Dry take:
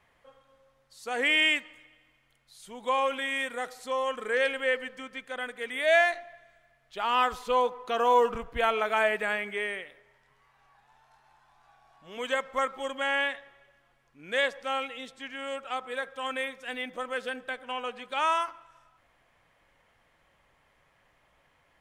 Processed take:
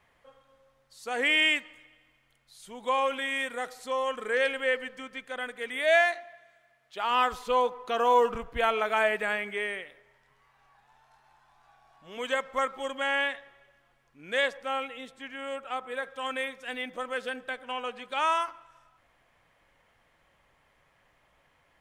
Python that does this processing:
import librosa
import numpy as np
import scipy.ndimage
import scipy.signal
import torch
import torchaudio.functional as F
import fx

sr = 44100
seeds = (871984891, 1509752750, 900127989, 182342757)

y = fx.highpass(x, sr, hz=240.0, slope=6, at=(5.97, 7.11))
y = fx.peak_eq(y, sr, hz=5100.0, db=-6.0, octaves=1.4, at=(14.57, 16.04))